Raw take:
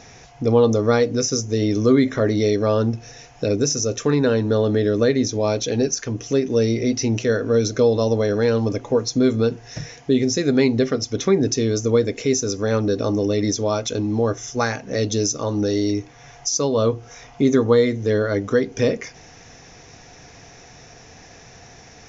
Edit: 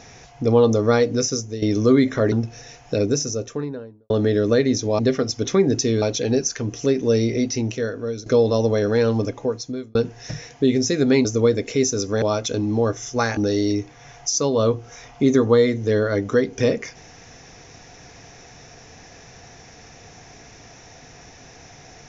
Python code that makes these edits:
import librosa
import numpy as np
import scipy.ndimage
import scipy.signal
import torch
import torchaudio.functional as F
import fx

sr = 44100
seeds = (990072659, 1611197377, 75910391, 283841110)

y = fx.studio_fade_out(x, sr, start_s=3.45, length_s=1.15)
y = fx.edit(y, sr, fx.fade_out_to(start_s=1.22, length_s=0.4, floor_db=-11.5),
    fx.cut(start_s=2.32, length_s=0.5),
    fx.fade_out_to(start_s=6.74, length_s=0.99, floor_db=-13.5),
    fx.fade_out_span(start_s=8.65, length_s=0.77),
    fx.move(start_s=10.72, length_s=1.03, to_s=5.49),
    fx.cut(start_s=12.72, length_s=0.91),
    fx.cut(start_s=14.78, length_s=0.78), tone=tone)